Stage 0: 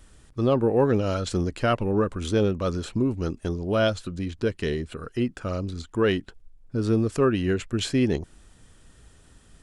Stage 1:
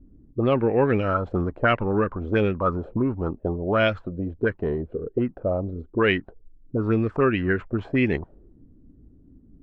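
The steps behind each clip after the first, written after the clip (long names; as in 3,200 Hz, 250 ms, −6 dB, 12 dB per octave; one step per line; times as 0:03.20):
envelope-controlled low-pass 260–2,300 Hz up, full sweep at −18 dBFS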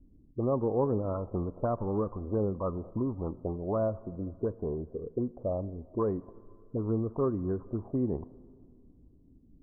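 Chebyshev low-pass filter 1,100 Hz, order 5
on a send at −19 dB: convolution reverb RT60 2.3 s, pre-delay 18 ms
on the sum: level −7 dB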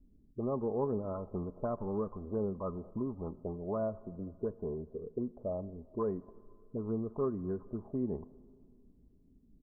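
comb filter 4.8 ms, depth 36%
level −5.5 dB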